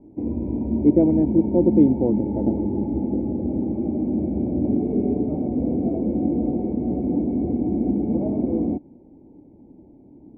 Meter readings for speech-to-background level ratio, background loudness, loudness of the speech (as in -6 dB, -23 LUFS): 3.5 dB, -24.0 LUFS, -20.5 LUFS